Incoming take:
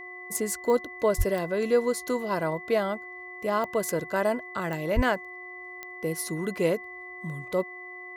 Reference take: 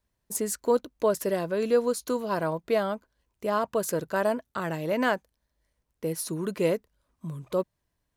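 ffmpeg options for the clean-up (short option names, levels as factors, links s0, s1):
-filter_complex "[0:a]adeclick=t=4,bandreject=f=362.8:t=h:w=4,bandreject=f=725.6:t=h:w=4,bandreject=f=1088.4:t=h:w=4,bandreject=f=2000:w=30,asplit=3[s0][s1][s2];[s0]afade=t=out:st=1.17:d=0.02[s3];[s1]highpass=f=140:w=0.5412,highpass=f=140:w=1.3066,afade=t=in:st=1.17:d=0.02,afade=t=out:st=1.29:d=0.02[s4];[s2]afade=t=in:st=1.29:d=0.02[s5];[s3][s4][s5]amix=inputs=3:normalize=0,asplit=3[s6][s7][s8];[s6]afade=t=out:st=4.95:d=0.02[s9];[s7]highpass=f=140:w=0.5412,highpass=f=140:w=1.3066,afade=t=in:st=4.95:d=0.02,afade=t=out:st=5.07:d=0.02[s10];[s8]afade=t=in:st=5.07:d=0.02[s11];[s9][s10][s11]amix=inputs=3:normalize=0"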